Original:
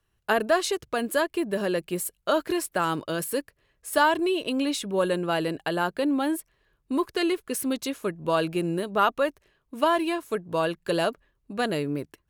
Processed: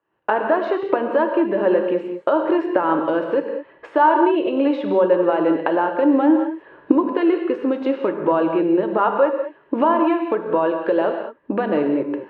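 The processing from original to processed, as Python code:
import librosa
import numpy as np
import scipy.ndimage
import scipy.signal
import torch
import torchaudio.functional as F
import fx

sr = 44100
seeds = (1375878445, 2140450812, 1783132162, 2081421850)

y = fx.recorder_agc(x, sr, target_db=-14.0, rise_db_per_s=50.0, max_gain_db=30)
y = fx.cabinet(y, sr, low_hz=260.0, low_slope=12, high_hz=2400.0, hz=(310.0, 540.0, 910.0, 2200.0), db=(9, 8, 9, -3))
y = fx.rev_gated(y, sr, seeds[0], gate_ms=240, shape='flat', drr_db=4.0)
y = F.gain(torch.from_numpy(y), -1.5).numpy()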